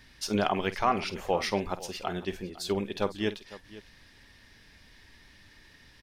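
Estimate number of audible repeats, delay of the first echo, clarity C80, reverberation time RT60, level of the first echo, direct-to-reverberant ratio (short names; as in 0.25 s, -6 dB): 2, 50 ms, none, none, -14.5 dB, none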